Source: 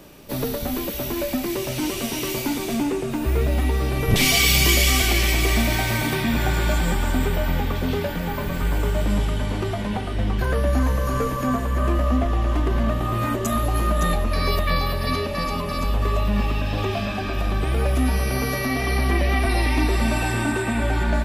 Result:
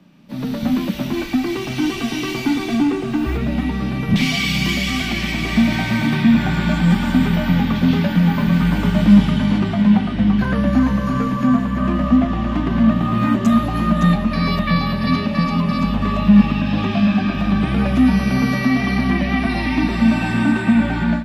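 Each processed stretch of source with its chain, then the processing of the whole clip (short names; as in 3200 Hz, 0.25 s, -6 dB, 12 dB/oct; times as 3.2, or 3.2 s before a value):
1.12–3.36 comb 2.6 ms, depth 93% + added noise pink -43 dBFS
6.9–9.59 high shelf 4400 Hz +6 dB + notch 7700 Hz
whole clip: three-band isolator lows -23 dB, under 230 Hz, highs -17 dB, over 5000 Hz; AGC gain up to 15 dB; resonant low shelf 280 Hz +13.5 dB, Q 3; gain -8.5 dB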